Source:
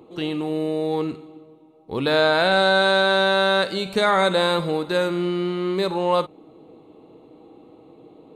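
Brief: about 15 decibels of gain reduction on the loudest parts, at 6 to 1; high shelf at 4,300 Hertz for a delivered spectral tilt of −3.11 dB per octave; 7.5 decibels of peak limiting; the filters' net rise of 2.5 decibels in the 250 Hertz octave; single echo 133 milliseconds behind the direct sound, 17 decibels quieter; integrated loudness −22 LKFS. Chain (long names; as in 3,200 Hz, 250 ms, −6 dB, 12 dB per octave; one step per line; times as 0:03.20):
parametric band 250 Hz +4 dB
high-shelf EQ 4,300 Hz +8.5 dB
downward compressor 6 to 1, threshold −30 dBFS
brickwall limiter −27 dBFS
single-tap delay 133 ms −17 dB
level +15 dB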